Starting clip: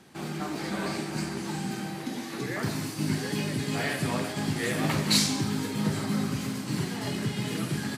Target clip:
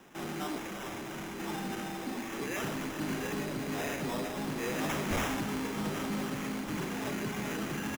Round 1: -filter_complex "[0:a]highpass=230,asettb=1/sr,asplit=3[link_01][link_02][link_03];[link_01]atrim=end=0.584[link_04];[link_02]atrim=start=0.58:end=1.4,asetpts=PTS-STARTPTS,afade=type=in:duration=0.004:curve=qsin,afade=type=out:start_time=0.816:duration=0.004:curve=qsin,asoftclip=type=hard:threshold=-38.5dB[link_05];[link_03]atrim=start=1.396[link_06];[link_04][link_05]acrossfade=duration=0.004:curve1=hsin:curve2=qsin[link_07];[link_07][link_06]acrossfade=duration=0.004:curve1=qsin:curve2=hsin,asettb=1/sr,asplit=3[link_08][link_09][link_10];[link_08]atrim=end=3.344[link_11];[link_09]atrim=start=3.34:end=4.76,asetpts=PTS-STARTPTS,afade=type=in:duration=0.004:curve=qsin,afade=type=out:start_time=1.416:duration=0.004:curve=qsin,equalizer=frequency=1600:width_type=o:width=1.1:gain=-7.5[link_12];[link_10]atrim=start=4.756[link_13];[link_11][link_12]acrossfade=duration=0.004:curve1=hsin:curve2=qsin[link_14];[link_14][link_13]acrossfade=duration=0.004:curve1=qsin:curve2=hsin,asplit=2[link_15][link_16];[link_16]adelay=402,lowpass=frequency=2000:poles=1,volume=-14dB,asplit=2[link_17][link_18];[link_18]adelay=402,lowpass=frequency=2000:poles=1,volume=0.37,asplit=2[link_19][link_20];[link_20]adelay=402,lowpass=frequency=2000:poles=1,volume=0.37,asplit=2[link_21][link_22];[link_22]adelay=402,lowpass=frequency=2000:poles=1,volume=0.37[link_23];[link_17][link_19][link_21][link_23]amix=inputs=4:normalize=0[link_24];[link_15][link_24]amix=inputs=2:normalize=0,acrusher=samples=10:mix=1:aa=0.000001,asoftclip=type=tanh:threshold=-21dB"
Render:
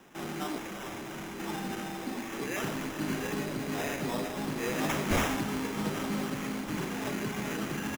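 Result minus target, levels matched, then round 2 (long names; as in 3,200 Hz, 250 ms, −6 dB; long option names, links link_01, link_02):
soft clipping: distortion −6 dB
-filter_complex "[0:a]highpass=230,asettb=1/sr,asplit=3[link_01][link_02][link_03];[link_01]atrim=end=0.584[link_04];[link_02]atrim=start=0.58:end=1.4,asetpts=PTS-STARTPTS,afade=type=in:duration=0.004:curve=qsin,afade=type=out:start_time=0.816:duration=0.004:curve=qsin,asoftclip=type=hard:threshold=-38.5dB[link_05];[link_03]atrim=start=1.396[link_06];[link_04][link_05]acrossfade=duration=0.004:curve1=hsin:curve2=qsin[link_07];[link_07][link_06]acrossfade=duration=0.004:curve1=qsin:curve2=hsin,asettb=1/sr,asplit=3[link_08][link_09][link_10];[link_08]atrim=end=3.344[link_11];[link_09]atrim=start=3.34:end=4.76,asetpts=PTS-STARTPTS,afade=type=in:duration=0.004:curve=qsin,afade=type=out:start_time=1.416:duration=0.004:curve=qsin,equalizer=frequency=1600:width_type=o:width=1.1:gain=-7.5[link_12];[link_10]atrim=start=4.756[link_13];[link_11][link_12]acrossfade=duration=0.004:curve1=hsin:curve2=qsin[link_14];[link_14][link_13]acrossfade=duration=0.004:curve1=qsin:curve2=hsin,asplit=2[link_15][link_16];[link_16]adelay=402,lowpass=frequency=2000:poles=1,volume=-14dB,asplit=2[link_17][link_18];[link_18]adelay=402,lowpass=frequency=2000:poles=1,volume=0.37,asplit=2[link_19][link_20];[link_20]adelay=402,lowpass=frequency=2000:poles=1,volume=0.37,asplit=2[link_21][link_22];[link_22]adelay=402,lowpass=frequency=2000:poles=1,volume=0.37[link_23];[link_17][link_19][link_21][link_23]amix=inputs=4:normalize=0[link_24];[link_15][link_24]amix=inputs=2:normalize=0,acrusher=samples=10:mix=1:aa=0.000001,asoftclip=type=tanh:threshold=-28dB"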